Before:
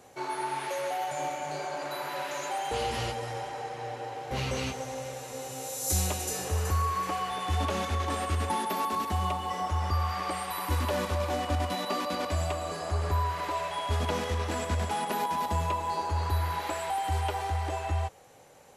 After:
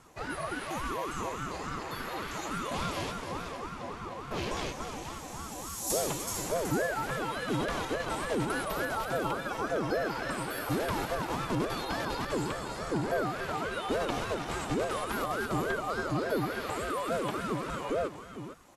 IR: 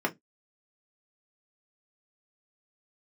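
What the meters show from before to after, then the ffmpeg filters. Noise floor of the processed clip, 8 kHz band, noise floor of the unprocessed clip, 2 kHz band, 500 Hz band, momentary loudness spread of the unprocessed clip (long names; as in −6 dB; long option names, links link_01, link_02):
−42 dBFS, −2.5 dB, −41 dBFS, +2.5 dB, +1.5 dB, 6 LU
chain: -af "aecho=1:1:457:0.316,aeval=exprs='val(0)*sin(2*PI*410*n/s+410*0.5/3.5*sin(2*PI*3.5*n/s))':channel_layout=same"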